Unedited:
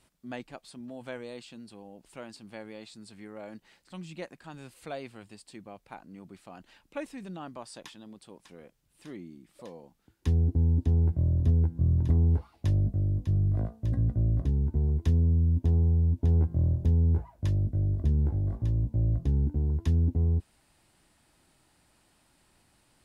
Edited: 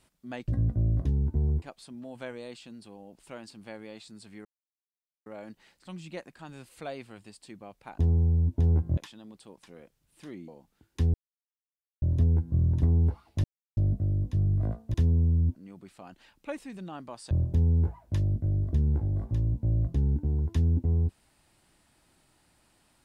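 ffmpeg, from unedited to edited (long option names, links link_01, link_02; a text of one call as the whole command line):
ffmpeg -i in.wav -filter_complex "[0:a]asplit=13[link_01][link_02][link_03][link_04][link_05][link_06][link_07][link_08][link_09][link_10][link_11][link_12][link_13];[link_01]atrim=end=0.482[link_14];[link_02]atrim=start=13.878:end=15.022[link_15];[link_03]atrim=start=0.478:end=3.31,asetpts=PTS-STARTPTS,afade=type=out:start_time=2.828:duration=0.004:curve=hsin,apad=pad_dur=0.81[link_16];[link_04]atrim=start=3.31:end=6.032,asetpts=PTS-STARTPTS,afade=type=in:duration=0.004:curve=hsin[link_17];[link_05]atrim=start=15.628:end=16.622[link_18];[link_06]atrim=start=7.788:end=9.302[link_19];[link_07]atrim=start=9.748:end=10.41,asetpts=PTS-STARTPTS,afade=type=out:start_time=0.658:duration=0.004:curve=hsin[link_20];[link_08]atrim=start=10.41:end=11.29,asetpts=PTS-STARTPTS,volume=0[link_21];[link_09]atrim=start=11.29:end=12.71,asetpts=PTS-STARTPTS,afade=type=in:duration=0.004:curve=hsin,afade=type=out:start_time=1.416:duration=0.004:curve=hsin,apad=pad_dur=0.33[link_22];[link_10]atrim=start=12.71:end=13.882,asetpts=PTS-STARTPTS,afade=type=in:duration=0.004:curve=hsin[link_23];[link_11]atrim=start=15.018:end=15.632[link_24];[link_12]atrim=start=6.028:end=7.792[link_25];[link_13]atrim=start=16.618[link_26];[link_14][link_15]acrossfade=duration=0.004:curve1=hsin:curve2=hsin[link_27];[link_16][link_17]concat=n=2:v=0:a=1[link_28];[link_27][link_28]acrossfade=duration=0.004:curve1=hsin:curve2=hsin[link_29];[link_29][link_18]acrossfade=duration=0.004:curve1=hsin:curve2=hsin[link_30];[link_30][link_19]acrossfade=duration=0.004:curve1=hsin:curve2=hsin[link_31];[link_20][link_21][link_22][link_23]concat=n=4:v=0:a=1[link_32];[link_31][link_32]acrossfade=duration=0.004:curve1=hsin:curve2=hsin[link_33];[link_33][link_24]acrossfade=duration=0.004:curve1=hsin:curve2=hsin[link_34];[link_34][link_25]acrossfade=duration=0.004:curve1=hsin:curve2=hsin[link_35];[link_35][link_26]acrossfade=duration=0.004:curve1=hsin:curve2=hsin" out.wav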